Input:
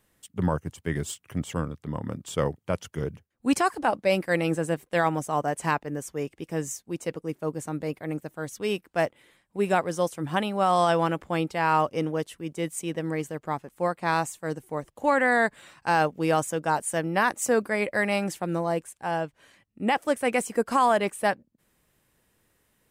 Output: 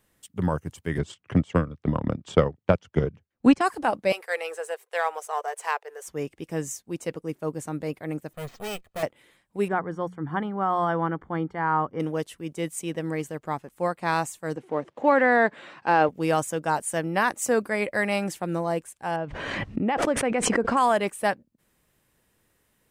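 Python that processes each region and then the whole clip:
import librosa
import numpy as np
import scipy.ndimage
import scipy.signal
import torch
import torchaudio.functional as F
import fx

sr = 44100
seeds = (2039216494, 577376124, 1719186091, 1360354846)

y = fx.chain(x, sr, fx.transient(attack_db=11, sustain_db=-8),
    fx.air_absorb(metres=120.0),
    fx.band_squash(depth_pct=40), at=(0.98, 3.61))
y = fx.chain(y, sr, fx.halfwave_gain(db=-3.0),
    fx.ellip_highpass(hz=440.0, order=4, stop_db=40),
    fx.notch(hz=570.0, q=7.5), at=(4.12, 6.07))
y = fx.chain(y, sr, fx.lower_of_two(delay_ms=1.6),
    fx.resample_bad(factor=4, down='filtered', up='hold'),
    fx.clip_hard(threshold_db=-29.0), at=(8.33, 9.03))
y = fx.chain(y, sr, fx.savgol(points=41),
    fx.peak_eq(hz=590.0, db=-9.5, octaves=0.44),
    fx.hum_notches(base_hz=60, count=3), at=(9.68, 12.0))
y = fx.chain(y, sr, fx.law_mismatch(coded='mu'),
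    fx.bandpass_edges(low_hz=310.0, high_hz=3400.0),
    fx.low_shelf(hz=400.0, db=10.5), at=(14.56, 16.09))
y = fx.chain(y, sr, fx.spacing_loss(db_at_10k=26),
    fx.pre_swell(db_per_s=23.0), at=(19.16, 20.77))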